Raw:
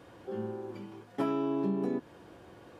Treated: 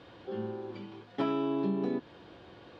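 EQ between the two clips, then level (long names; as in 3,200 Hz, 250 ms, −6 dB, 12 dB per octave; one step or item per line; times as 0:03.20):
low-pass with resonance 3,900 Hz, resonance Q 2.3
0.0 dB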